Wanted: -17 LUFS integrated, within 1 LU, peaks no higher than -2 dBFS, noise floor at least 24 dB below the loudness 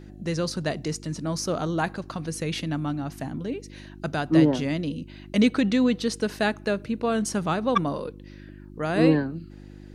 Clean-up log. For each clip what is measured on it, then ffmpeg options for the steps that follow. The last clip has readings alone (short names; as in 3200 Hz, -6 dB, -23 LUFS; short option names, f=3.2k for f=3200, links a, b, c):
hum 50 Hz; harmonics up to 350 Hz; hum level -42 dBFS; loudness -26.0 LUFS; peak -7.0 dBFS; loudness target -17.0 LUFS
-> -af "bandreject=f=50:t=h:w=4,bandreject=f=100:t=h:w=4,bandreject=f=150:t=h:w=4,bandreject=f=200:t=h:w=4,bandreject=f=250:t=h:w=4,bandreject=f=300:t=h:w=4,bandreject=f=350:t=h:w=4"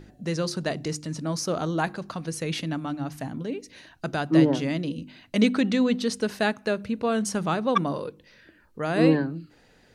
hum none; loudness -26.5 LUFS; peak -7.5 dBFS; loudness target -17.0 LUFS
-> -af "volume=9.5dB,alimiter=limit=-2dB:level=0:latency=1"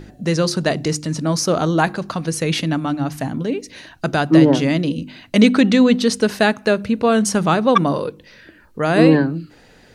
loudness -17.5 LUFS; peak -2.0 dBFS; noise floor -49 dBFS